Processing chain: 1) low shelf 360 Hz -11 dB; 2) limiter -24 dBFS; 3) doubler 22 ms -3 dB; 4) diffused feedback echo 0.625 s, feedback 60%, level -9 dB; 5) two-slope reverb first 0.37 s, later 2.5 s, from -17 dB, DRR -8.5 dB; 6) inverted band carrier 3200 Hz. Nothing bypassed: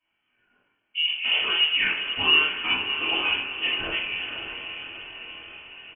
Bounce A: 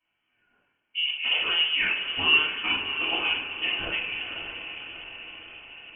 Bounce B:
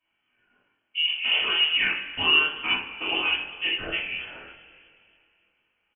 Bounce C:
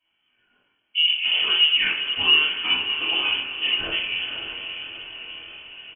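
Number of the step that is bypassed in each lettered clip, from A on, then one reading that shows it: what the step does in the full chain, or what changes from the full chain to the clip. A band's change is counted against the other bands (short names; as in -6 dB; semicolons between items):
3, loudness change -2.0 LU; 4, momentary loudness spread change -6 LU; 1, 2 kHz band +2.5 dB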